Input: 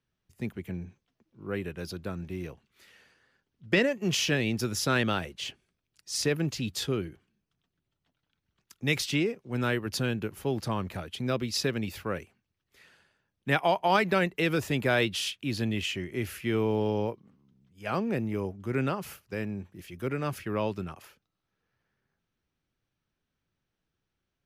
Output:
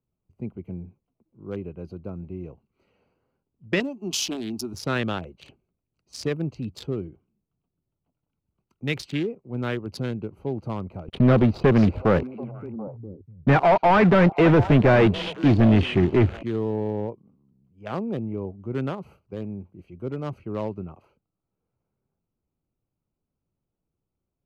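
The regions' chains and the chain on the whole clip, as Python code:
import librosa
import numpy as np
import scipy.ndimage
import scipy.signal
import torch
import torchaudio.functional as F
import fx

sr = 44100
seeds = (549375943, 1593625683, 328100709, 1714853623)

y = fx.chain(x, sr, fx.high_shelf(hz=2300.0, db=9.0),
    fx.fixed_phaser(hz=510.0, stages=6), at=(3.8, 4.74))
y = fx.chain(y, sr, fx.leveller(passes=5),
    fx.spacing_loss(db_at_10k=37),
    fx.echo_stepped(ms=245, hz=5100.0, octaves=-1.4, feedback_pct=70, wet_db=-6), at=(11.08, 16.43))
y = fx.wiener(y, sr, points=25)
y = fx.high_shelf(y, sr, hz=5400.0, db=-6.0)
y = y * 10.0 ** (1.5 / 20.0)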